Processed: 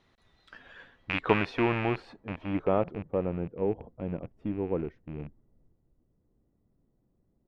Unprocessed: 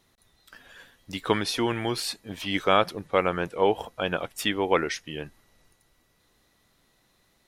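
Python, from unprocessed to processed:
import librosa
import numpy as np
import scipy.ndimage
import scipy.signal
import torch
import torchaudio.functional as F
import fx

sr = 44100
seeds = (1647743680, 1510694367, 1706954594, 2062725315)

y = fx.rattle_buzz(x, sr, strikes_db=-40.0, level_db=-11.0)
y = fx.filter_sweep_lowpass(y, sr, from_hz=3400.0, to_hz=330.0, start_s=0.44, end_s=3.49, q=0.72)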